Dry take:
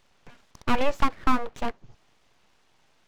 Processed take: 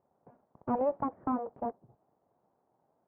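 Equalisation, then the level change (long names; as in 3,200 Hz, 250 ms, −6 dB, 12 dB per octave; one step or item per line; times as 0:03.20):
high-pass filter 120 Hz 12 dB per octave
transistor ladder low-pass 930 Hz, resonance 35%
high-frequency loss of the air 130 metres
+2.5 dB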